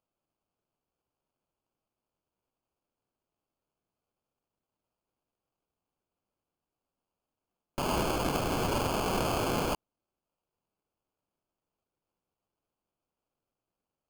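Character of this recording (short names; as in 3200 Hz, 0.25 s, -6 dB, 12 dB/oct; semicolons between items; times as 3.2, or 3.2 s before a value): aliases and images of a low sample rate 1900 Hz, jitter 0%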